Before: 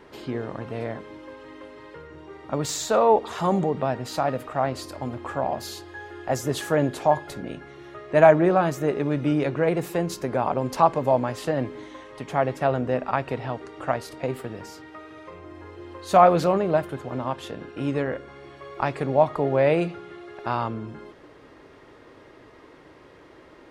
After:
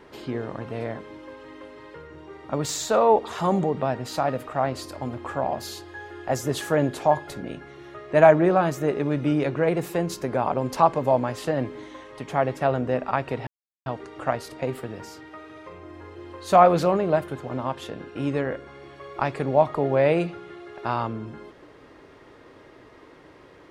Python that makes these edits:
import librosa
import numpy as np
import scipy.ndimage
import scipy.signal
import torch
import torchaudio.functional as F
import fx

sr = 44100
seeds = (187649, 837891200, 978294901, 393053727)

y = fx.edit(x, sr, fx.insert_silence(at_s=13.47, length_s=0.39), tone=tone)